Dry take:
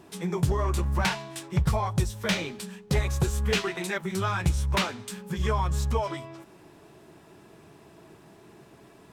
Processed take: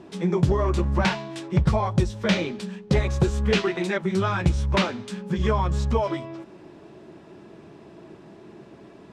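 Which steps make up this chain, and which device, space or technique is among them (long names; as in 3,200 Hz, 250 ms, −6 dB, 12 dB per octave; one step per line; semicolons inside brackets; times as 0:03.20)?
inside a cardboard box (low-pass filter 5,400 Hz 12 dB per octave; hollow resonant body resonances 220/340/540 Hz, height 6 dB, ringing for 25 ms)
level +2 dB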